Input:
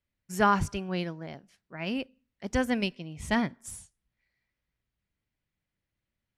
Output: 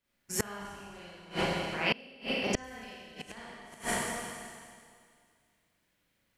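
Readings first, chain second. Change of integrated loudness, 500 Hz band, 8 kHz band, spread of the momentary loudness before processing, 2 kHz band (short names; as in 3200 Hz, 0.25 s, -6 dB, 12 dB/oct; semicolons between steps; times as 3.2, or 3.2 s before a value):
-5.0 dB, -3.0 dB, +5.0 dB, 19 LU, -1.0 dB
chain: spectral limiter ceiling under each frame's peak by 13 dB; Schroeder reverb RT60 2.1 s, combs from 31 ms, DRR -9 dB; flipped gate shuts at -15 dBFS, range -27 dB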